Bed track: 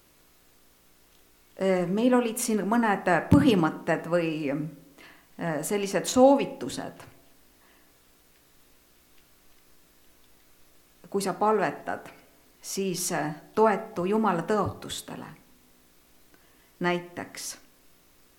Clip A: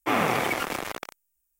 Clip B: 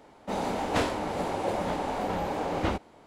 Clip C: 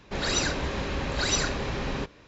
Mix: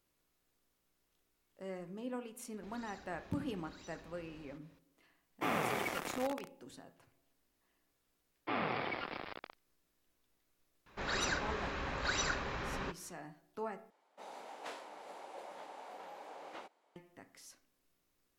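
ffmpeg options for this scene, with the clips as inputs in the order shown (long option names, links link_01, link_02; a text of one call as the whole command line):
ffmpeg -i bed.wav -i cue0.wav -i cue1.wav -i cue2.wav -filter_complex "[3:a]asplit=2[link_01][link_02];[1:a]asplit=2[link_03][link_04];[0:a]volume=-20dB[link_05];[link_01]acompressor=threshold=-38dB:ratio=6:attack=3.2:release=140:knee=1:detection=peak[link_06];[link_04]aresample=11025,aresample=44100[link_07];[link_02]equalizer=frequency=1300:width_type=o:width=1.8:gain=9[link_08];[2:a]highpass=540[link_09];[link_05]asplit=2[link_10][link_11];[link_10]atrim=end=13.904[link_12];[link_09]atrim=end=3.06,asetpts=PTS-STARTPTS,volume=-17dB[link_13];[link_11]atrim=start=16.956[link_14];[link_06]atrim=end=2.27,asetpts=PTS-STARTPTS,volume=-16.5dB,afade=type=in:duration=0.004:curve=hsin,afade=type=out:start_time=2.266:duration=0.004:curve=hsin,adelay=2520[link_15];[link_03]atrim=end=1.59,asetpts=PTS-STARTPTS,volume=-11dB,afade=type=in:duration=0.004:curve=hsin,afade=type=out:start_time=1.586:duration=0.004:curve=hsin,adelay=5350[link_16];[link_07]atrim=end=1.59,asetpts=PTS-STARTPTS,volume=-12.5dB,afade=type=in:duration=0.004:curve=hsin,afade=type=out:start_time=1.586:duration=0.004:curve=hsin,adelay=8410[link_17];[link_08]atrim=end=2.27,asetpts=PTS-STARTPTS,volume=-12.5dB,afade=type=in:duration=0.004:curve=hsin,afade=type=out:start_time=2.266:duration=0.004:curve=hsin,adelay=10860[link_18];[link_12][link_13]acrossfade=duration=0.004:curve1=hsin:curve2=hsin[link_19];[link_19][link_14]acrossfade=duration=0.004:curve1=hsin:curve2=hsin[link_20];[link_20][link_15][link_16][link_17][link_18]amix=inputs=5:normalize=0" out.wav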